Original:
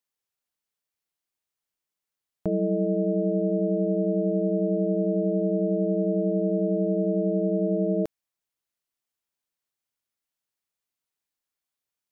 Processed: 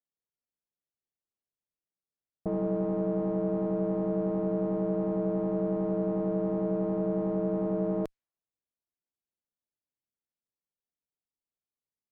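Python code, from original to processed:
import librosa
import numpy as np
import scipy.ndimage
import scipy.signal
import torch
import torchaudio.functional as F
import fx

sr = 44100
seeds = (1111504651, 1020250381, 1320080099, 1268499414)

y = fx.diode_clip(x, sr, knee_db=-22.0)
y = fx.env_lowpass(y, sr, base_hz=560.0, full_db=-25.0)
y = y * librosa.db_to_amplitude(-3.0)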